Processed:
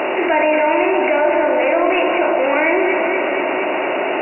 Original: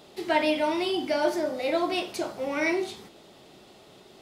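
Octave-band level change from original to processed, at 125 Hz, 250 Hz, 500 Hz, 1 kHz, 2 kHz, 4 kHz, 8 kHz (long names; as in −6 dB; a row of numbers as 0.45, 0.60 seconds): can't be measured, +10.0 dB, +13.0 dB, +14.0 dB, +14.5 dB, +3.5 dB, below −25 dB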